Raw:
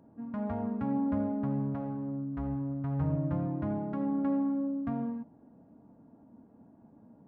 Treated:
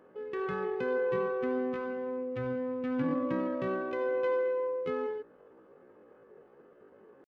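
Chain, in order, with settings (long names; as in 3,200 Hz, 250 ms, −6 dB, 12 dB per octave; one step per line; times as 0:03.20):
pitch shifter +10.5 semitones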